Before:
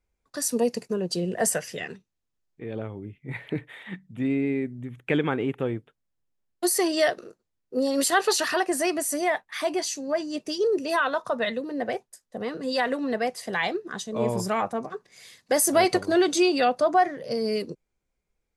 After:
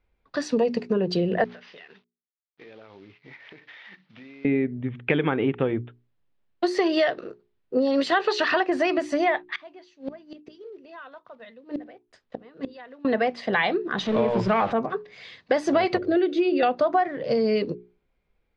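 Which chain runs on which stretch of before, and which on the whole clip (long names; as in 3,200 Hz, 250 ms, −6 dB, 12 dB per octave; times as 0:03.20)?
0:01.44–0:04.45: variable-slope delta modulation 32 kbit/s + high-pass filter 1,100 Hz 6 dB per octave + downward compressor 16 to 1, threshold −49 dBFS
0:09.54–0:13.05: one scale factor per block 5 bits + high-shelf EQ 8,200 Hz −4 dB + gate with flip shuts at −25 dBFS, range −26 dB
0:13.98–0:14.73: converter with a step at zero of −33 dBFS + high-shelf EQ 7,900 Hz −5.5 dB
0:15.98–0:16.63: low-pass filter 1,400 Hz 6 dB per octave + phaser with its sweep stopped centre 390 Hz, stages 4
whole clip: low-pass filter 3,800 Hz 24 dB per octave; mains-hum notches 60/120/180/240/300/360/420 Hz; downward compressor 6 to 1, threshold −26 dBFS; level +7.5 dB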